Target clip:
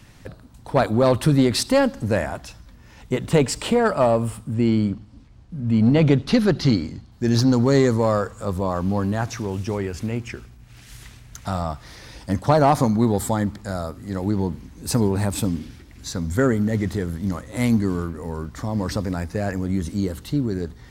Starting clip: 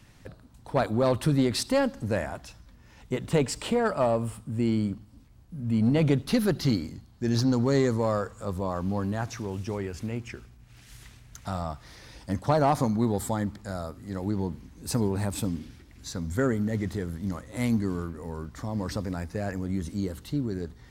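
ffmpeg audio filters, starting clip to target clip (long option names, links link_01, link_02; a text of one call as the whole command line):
ffmpeg -i in.wav -filter_complex "[0:a]asettb=1/sr,asplit=3[link_01][link_02][link_03];[link_01]atrim=end=4.544[link_04];[link_02]atrim=start=4.54:end=7.12,asetpts=PTS-STARTPTS,afade=type=in:duration=0.004:curve=qsin,afade=type=out:start_time=2.576:duration=0.004:curve=qsin,lowpass=6200[link_05];[link_03]atrim=start=7.116[link_06];[link_04][link_05]acrossfade=duration=0.004:curve1=hsin:curve2=qsin[link_07];[link_07][link_06]acrossfade=duration=0.004:curve1=qsin:curve2=hsin,volume=6.5dB" out.wav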